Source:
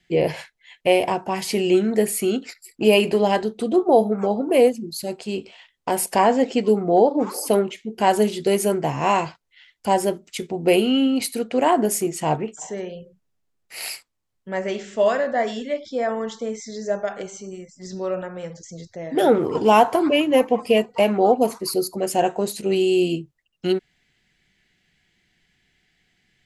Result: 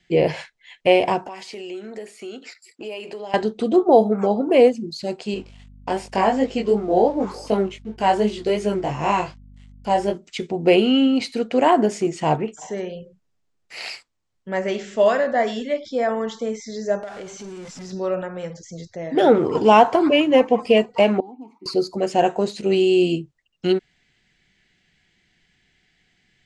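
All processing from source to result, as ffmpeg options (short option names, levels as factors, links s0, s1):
-filter_complex "[0:a]asettb=1/sr,asplit=3[s0][s1][s2];[s0]atrim=end=1.274[s3];[s1]atrim=start=1.27:end=3.34,asetpts=PTS-STARTPTS,afade=t=in:d=0.004:c=qsin,afade=t=out:st=2.066:d=0.004:c=qsin,highpass=350,acompressor=threshold=0.0141:ratio=3:attack=3.2:release=140:knee=1:detection=peak[s4];[s2]atrim=start=3.336[s5];[s3][s4]acrossfade=d=0.004:c1=hsin:c2=qsin[s6];[s6][s5]acrossfade=d=0.004:c1=qsin:c2=hsin,asettb=1/sr,asplit=3[s7][s8][s9];[s7]atrim=end=5.344[s10];[s8]atrim=start=5.34:end=10.14,asetpts=PTS-STARTPTS,afade=t=in:d=0.004:c=qsin,afade=t=out:st=4.796:d=0.004:c=qsin,aeval=exprs='sgn(val(0))*max(abs(val(0))-0.00398,0)':c=same,flanger=delay=19:depth=3.5:speed=2.7,aeval=exprs='val(0)+0.00501*(sin(2*PI*50*n/s)+sin(2*PI*2*50*n/s)/2+sin(2*PI*3*50*n/s)/3+sin(2*PI*4*50*n/s)/4+sin(2*PI*5*50*n/s)/5)':c=same[s11];[s9]atrim=start=10.136[s12];[s10][s11]acrossfade=d=0.004:c1=hsin:c2=qsin[s13];[s13][s12]acrossfade=d=0.004:c1=qsin:c2=hsin,asettb=1/sr,asplit=3[s14][s15][s16];[s14]atrim=end=17.034[s17];[s15]atrim=start=17.03:end=17.92,asetpts=PTS-STARTPTS,afade=t=in:d=0.004:c=qsin,afade=t=out:st=0.886:d=0.004:c=qsin,aeval=exprs='val(0)+0.5*0.02*sgn(val(0))':c=same,acompressor=threshold=0.0141:ratio=2.5:attack=3.2:release=140:knee=1:detection=peak[s18];[s16]atrim=start=17.916[s19];[s17][s18]acrossfade=d=0.004:c1=hsin:c2=qsin[s20];[s20][s19]acrossfade=d=0.004:c1=qsin:c2=hsin,asettb=1/sr,asplit=3[s21][s22][s23];[s21]atrim=end=21.204[s24];[s22]atrim=start=21.2:end=21.66,asetpts=PTS-STARTPTS,afade=t=in:d=0.004:c=qsin,afade=t=out:st=0.456:d=0.004:c=qsin,acrossover=split=240|1100|4100[s25][s26][s27][s28];[s25]acompressor=threshold=0.02:ratio=3[s29];[s26]acompressor=threshold=0.0282:ratio=3[s30];[s27]acompressor=threshold=0.00355:ratio=3[s31];[s28]acompressor=threshold=0.00501:ratio=3[s32];[s29][s30][s31][s32]amix=inputs=4:normalize=0,asplit=3[s33][s34][s35];[s33]bandpass=f=300:t=q:w=8,volume=1[s36];[s34]bandpass=f=870:t=q:w=8,volume=0.501[s37];[s35]bandpass=f=2240:t=q:w=8,volume=0.355[s38];[s36][s37][s38]amix=inputs=3:normalize=0[s39];[s23]atrim=start=21.656[s40];[s24][s39]acrossfade=d=0.004:c1=hsin:c2=qsin[s41];[s41][s40]acrossfade=d=0.004:c1=qsin:c2=hsin,acrossover=split=5600[s42][s43];[s43]acompressor=threshold=0.00447:ratio=4:attack=1:release=60[s44];[s42][s44]amix=inputs=2:normalize=0,lowpass=f=8300:w=0.5412,lowpass=f=8300:w=1.3066,volume=1.26"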